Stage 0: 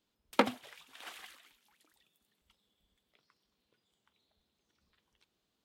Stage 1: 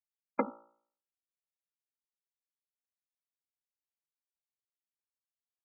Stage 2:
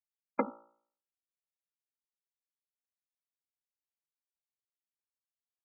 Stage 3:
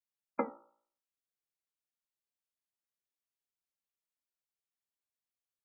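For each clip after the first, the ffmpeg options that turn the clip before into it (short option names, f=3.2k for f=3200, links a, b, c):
-af "afftfilt=real='re*gte(hypot(re,im),0.126)':imag='im*gte(hypot(re,im),0.126)':win_size=1024:overlap=0.75,bandreject=f=57.28:t=h:w=4,bandreject=f=114.56:t=h:w=4,bandreject=f=171.84:t=h:w=4,bandreject=f=229.12:t=h:w=4,bandreject=f=286.4:t=h:w=4,bandreject=f=343.68:t=h:w=4,bandreject=f=400.96:t=h:w=4,bandreject=f=458.24:t=h:w=4,bandreject=f=515.52:t=h:w=4,bandreject=f=572.8:t=h:w=4,bandreject=f=630.08:t=h:w=4,bandreject=f=687.36:t=h:w=4,bandreject=f=744.64:t=h:w=4,bandreject=f=801.92:t=h:w=4,bandreject=f=859.2:t=h:w=4,bandreject=f=916.48:t=h:w=4,bandreject=f=973.76:t=h:w=4,bandreject=f=1.03104k:t=h:w=4,bandreject=f=1.08832k:t=h:w=4,bandreject=f=1.1456k:t=h:w=4,bandreject=f=1.20288k:t=h:w=4,bandreject=f=1.26016k:t=h:w=4,bandreject=f=1.31744k:t=h:w=4,bandreject=f=1.37472k:t=h:w=4,bandreject=f=1.432k:t=h:w=4,bandreject=f=1.48928k:t=h:w=4,bandreject=f=1.54656k:t=h:w=4,volume=-2.5dB"
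-af anull
-af "flanger=delay=7.4:depth=9.1:regen=63:speed=0.68:shape=triangular,volume=1.5dB"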